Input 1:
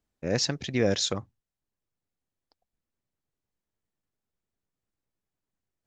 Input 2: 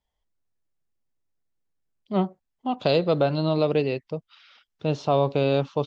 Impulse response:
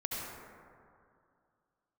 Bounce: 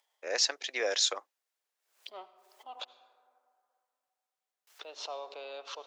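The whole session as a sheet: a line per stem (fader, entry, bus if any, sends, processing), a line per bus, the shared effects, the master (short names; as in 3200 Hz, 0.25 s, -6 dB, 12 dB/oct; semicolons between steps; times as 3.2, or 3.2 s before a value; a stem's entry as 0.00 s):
+1.0 dB, 0.00 s, no send, dry
-15.5 dB, 0.00 s, muted 2.85–4.67, send -15.5 dB, upward compressor, threshold -42 dBFS; backwards sustainer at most 89 dB/s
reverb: on, RT60 2.4 s, pre-delay 63 ms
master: Bessel high-pass 740 Hz, order 6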